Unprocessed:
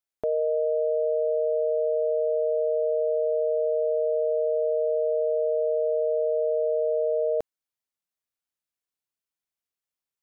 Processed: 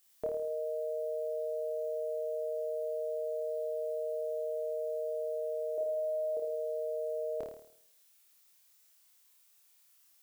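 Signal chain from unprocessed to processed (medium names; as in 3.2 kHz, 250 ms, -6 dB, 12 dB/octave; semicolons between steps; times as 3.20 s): 5.75–6.37 s: doubling 29 ms -3.5 dB; added noise blue -62 dBFS; flutter echo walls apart 4.6 m, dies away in 0.64 s; trim -7 dB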